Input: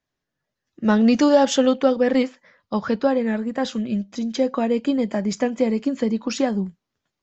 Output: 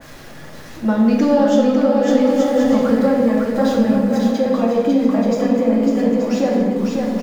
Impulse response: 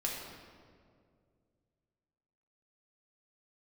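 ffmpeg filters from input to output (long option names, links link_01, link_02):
-filter_complex "[0:a]aeval=exprs='val(0)+0.5*0.0237*sgn(val(0))':channel_layout=same,aecho=1:1:550|880|1078|1197|1268:0.631|0.398|0.251|0.158|0.1,alimiter=limit=-8.5dB:level=0:latency=1:release=430,asettb=1/sr,asplit=3[link_01][link_02][link_03];[link_01]atrim=end=2.084[link_04];[link_02]atrim=start=2.08:end=4.31,asetpts=PTS-STARTPTS,afade=type=in:duration=0.004:curve=qsin,afade=type=out:start_time=2.226:duration=0.004:curve=qsin,bass=frequency=250:gain=5,treble=frequency=4000:gain=5[link_05];[link_03]atrim=start=4.306[link_06];[link_04][link_05]acrossfade=duration=0.004:curve1=hsin:curve2=qsin[link_07];[link_07][link_06]acrossfade=duration=0.004:curve1=qsin:curve2=hsin[link_08];[1:a]atrim=start_sample=2205,afade=type=out:start_time=0.35:duration=0.01,atrim=end_sample=15876[link_09];[link_08][link_09]afir=irnorm=-1:irlink=0,adynamicequalizer=threshold=0.00562:dfrequency=2000:dqfactor=0.7:tfrequency=2000:tqfactor=0.7:attack=5:release=100:ratio=0.375:range=3.5:mode=cutabove:tftype=highshelf,volume=-1dB"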